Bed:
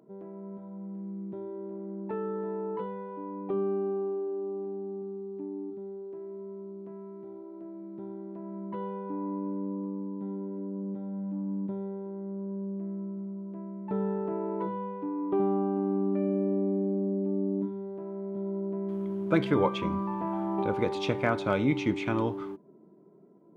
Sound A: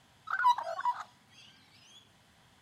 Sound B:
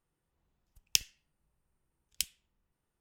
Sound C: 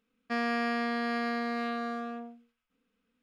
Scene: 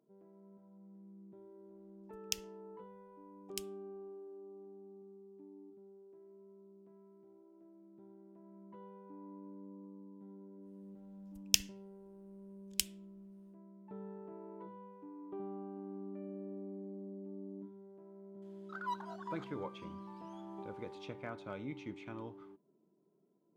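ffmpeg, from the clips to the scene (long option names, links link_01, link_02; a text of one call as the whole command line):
ffmpeg -i bed.wav -i cue0.wav -i cue1.wav -filter_complex "[2:a]asplit=2[link_01][link_02];[0:a]volume=-17.5dB[link_03];[1:a]aecho=1:1:196:0.188[link_04];[link_01]atrim=end=3,asetpts=PTS-STARTPTS,volume=-10dB,afade=type=in:duration=0.004:curve=hsin,afade=type=out:start_time=2.996:duration=0.004:curve=hsin,adelay=1370[link_05];[link_02]atrim=end=3,asetpts=PTS-STARTPTS,volume=-0.5dB,afade=type=in:duration=0.1,afade=type=out:start_time=2.9:duration=0.1,adelay=10590[link_06];[link_04]atrim=end=2.61,asetpts=PTS-STARTPTS,volume=-13.5dB,afade=type=in:duration=0.004:curve=hsin,afade=type=out:start_time=2.606:duration=0.004:curve=hsin,adelay=18420[link_07];[link_03][link_05][link_06][link_07]amix=inputs=4:normalize=0" out.wav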